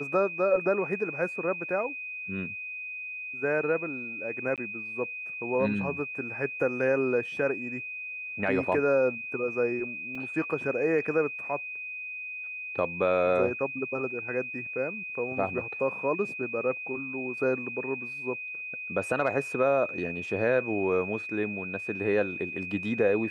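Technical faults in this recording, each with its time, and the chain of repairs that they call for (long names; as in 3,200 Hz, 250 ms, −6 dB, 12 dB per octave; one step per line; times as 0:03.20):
whistle 2,500 Hz −35 dBFS
0:04.56–0:04.58: drop-out 17 ms
0:10.15: drop-out 3.3 ms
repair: notch filter 2,500 Hz, Q 30
repair the gap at 0:04.56, 17 ms
repair the gap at 0:10.15, 3.3 ms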